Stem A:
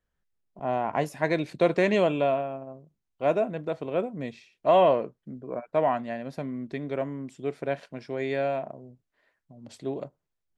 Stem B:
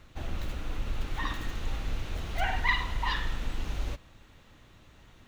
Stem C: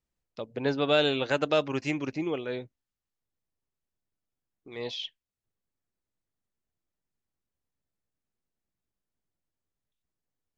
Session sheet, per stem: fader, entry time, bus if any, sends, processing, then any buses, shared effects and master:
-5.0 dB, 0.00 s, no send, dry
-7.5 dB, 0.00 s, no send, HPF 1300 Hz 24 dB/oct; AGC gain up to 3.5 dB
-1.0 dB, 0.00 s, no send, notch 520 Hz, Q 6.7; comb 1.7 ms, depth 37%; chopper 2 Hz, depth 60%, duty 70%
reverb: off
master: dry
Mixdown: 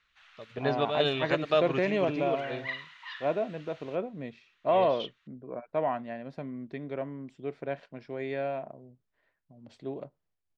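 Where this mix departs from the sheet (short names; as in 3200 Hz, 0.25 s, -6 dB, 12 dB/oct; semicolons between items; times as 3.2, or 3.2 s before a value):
stem B: missing AGC gain up to 3.5 dB; master: extra LPF 4000 Hz 12 dB/oct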